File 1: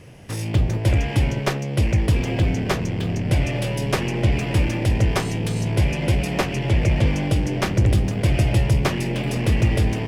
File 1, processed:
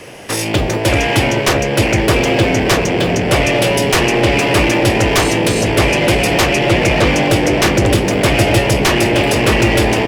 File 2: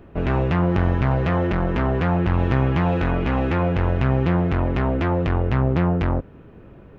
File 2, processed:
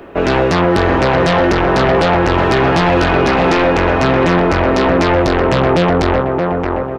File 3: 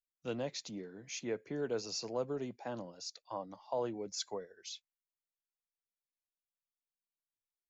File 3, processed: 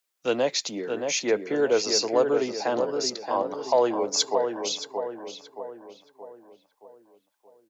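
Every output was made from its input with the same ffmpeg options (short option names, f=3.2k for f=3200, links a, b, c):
-filter_complex "[0:a]asplit=2[a][b];[b]adelay=624,lowpass=f=2k:p=1,volume=-5.5dB,asplit=2[c][d];[d]adelay=624,lowpass=f=2k:p=1,volume=0.49,asplit=2[e][f];[f]adelay=624,lowpass=f=2k:p=1,volume=0.49,asplit=2[g][h];[h]adelay=624,lowpass=f=2k:p=1,volume=0.49,asplit=2[i][j];[j]adelay=624,lowpass=f=2k:p=1,volume=0.49,asplit=2[k][l];[l]adelay=624,lowpass=f=2k:p=1,volume=0.49[m];[a][c][e][g][i][k][m]amix=inputs=7:normalize=0,acrossover=split=290[n][o];[o]aeval=exprs='0.447*sin(PI/2*4.47*val(0)/0.447)':c=same[p];[n][p]amix=inputs=2:normalize=0,volume=-1dB"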